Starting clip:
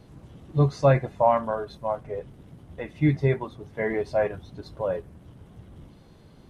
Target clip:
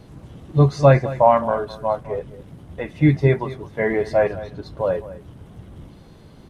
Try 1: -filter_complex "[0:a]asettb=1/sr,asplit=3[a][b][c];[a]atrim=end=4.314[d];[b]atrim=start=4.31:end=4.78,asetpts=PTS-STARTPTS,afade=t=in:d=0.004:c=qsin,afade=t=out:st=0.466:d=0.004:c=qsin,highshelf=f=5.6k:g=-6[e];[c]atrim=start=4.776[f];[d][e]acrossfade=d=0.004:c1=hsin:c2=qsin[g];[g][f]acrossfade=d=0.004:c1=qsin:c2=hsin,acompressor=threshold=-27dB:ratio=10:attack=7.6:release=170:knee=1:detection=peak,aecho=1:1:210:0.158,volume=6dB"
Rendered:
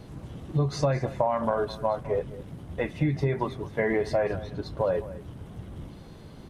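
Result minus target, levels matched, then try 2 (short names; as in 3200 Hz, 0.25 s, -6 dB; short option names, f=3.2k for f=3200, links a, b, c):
compressor: peak gain reduction +14.5 dB
-filter_complex "[0:a]asettb=1/sr,asplit=3[a][b][c];[a]atrim=end=4.314[d];[b]atrim=start=4.31:end=4.78,asetpts=PTS-STARTPTS,afade=t=in:d=0.004:c=qsin,afade=t=out:st=0.466:d=0.004:c=qsin,highshelf=f=5.6k:g=-6[e];[c]atrim=start=4.776[f];[d][e]acrossfade=d=0.004:c1=hsin:c2=qsin[g];[g][f]acrossfade=d=0.004:c1=qsin:c2=hsin,aecho=1:1:210:0.158,volume=6dB"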